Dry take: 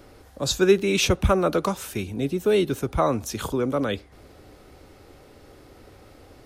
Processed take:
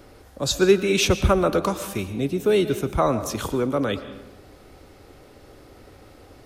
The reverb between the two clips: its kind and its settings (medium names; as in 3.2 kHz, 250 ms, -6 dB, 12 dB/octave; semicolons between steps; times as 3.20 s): algorithmic reverb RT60 1 s, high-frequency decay 0.65×, pre-delay 80 ms, DRR 11.5 dB; trim +1 dB